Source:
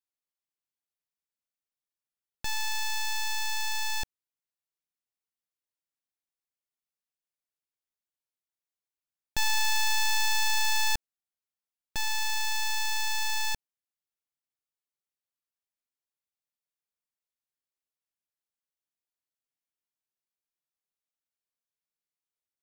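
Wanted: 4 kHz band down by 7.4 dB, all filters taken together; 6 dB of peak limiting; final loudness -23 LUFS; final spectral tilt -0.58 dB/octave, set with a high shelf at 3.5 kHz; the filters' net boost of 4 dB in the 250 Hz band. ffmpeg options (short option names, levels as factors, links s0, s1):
-af "equalizer=f=250:t=o:g=5.5,highshelf=f=3500:g=-3.5,equalizer=f=4000:t=o:g=-6.5,volume=4.22,alimiter=limit=0.188:level=0:latency=1"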